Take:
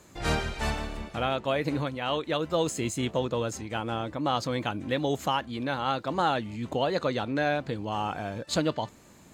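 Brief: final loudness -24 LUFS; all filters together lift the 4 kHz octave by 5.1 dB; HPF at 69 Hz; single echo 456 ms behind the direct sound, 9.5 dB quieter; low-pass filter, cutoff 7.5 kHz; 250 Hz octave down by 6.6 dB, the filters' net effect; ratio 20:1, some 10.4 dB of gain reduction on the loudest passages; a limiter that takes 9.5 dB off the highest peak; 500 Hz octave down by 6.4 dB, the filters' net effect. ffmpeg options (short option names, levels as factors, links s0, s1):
-af "highpass=69,lowpass=7500,equalizer=f=250:t=o:g=-6.5,equalizer=f=500:t=o:g=-6.5,equalizer=f=4000:t=o:g=7,acompressor=threshold=0.0251:ratio=20,alimiter=level_in=1.78:limit=0.0631:level=0:latency=1,volume=0.562,aecho=1:1:456:0.335,volume=6.31"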